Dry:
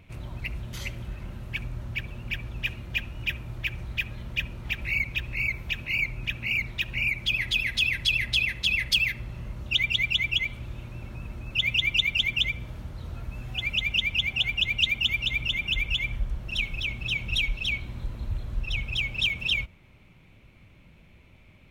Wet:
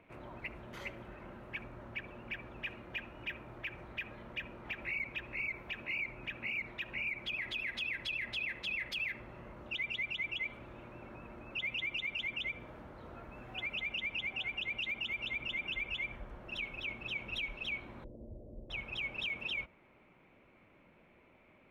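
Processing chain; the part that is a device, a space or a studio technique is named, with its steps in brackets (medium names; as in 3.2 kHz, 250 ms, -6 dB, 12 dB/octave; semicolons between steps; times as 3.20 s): DJ mixer with the lows and highs turned down (three-band isolator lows -20 dB, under 250 Hz, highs -19 dB, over 2.1 kHz; peak limiter -30 dBFS, peak gain reduction 7 dB); 18.04–18.70 s: Chebyshev low-pass 600 Hz, order 4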